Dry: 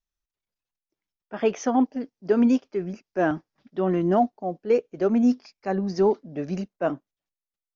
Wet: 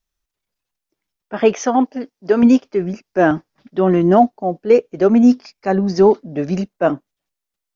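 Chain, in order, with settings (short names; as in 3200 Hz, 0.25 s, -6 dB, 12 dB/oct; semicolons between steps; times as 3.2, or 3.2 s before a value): 1.53–2.43 low shelf 270 Hz -9 dB; gain +9 dB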